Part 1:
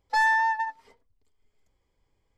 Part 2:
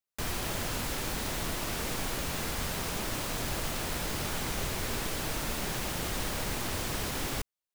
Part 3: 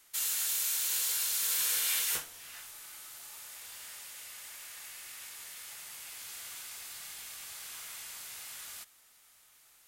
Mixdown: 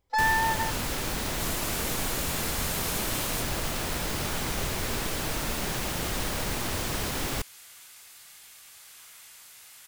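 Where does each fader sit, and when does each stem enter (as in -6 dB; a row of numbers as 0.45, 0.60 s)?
-2.5, +3.0, -5.0 dB; 0.00, 0.00, 1.25 s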